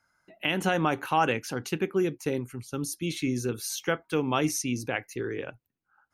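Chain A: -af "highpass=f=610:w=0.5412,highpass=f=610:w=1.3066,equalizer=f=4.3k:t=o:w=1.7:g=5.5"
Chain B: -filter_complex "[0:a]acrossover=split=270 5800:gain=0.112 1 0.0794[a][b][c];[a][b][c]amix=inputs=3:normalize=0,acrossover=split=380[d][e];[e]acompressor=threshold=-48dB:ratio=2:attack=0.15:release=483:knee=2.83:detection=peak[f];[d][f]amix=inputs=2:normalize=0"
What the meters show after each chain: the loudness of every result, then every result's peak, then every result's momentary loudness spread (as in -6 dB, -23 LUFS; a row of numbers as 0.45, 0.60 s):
-30.0, -38.5 LUFS; -9.5, -23.0 dBFS; 14, 8 LU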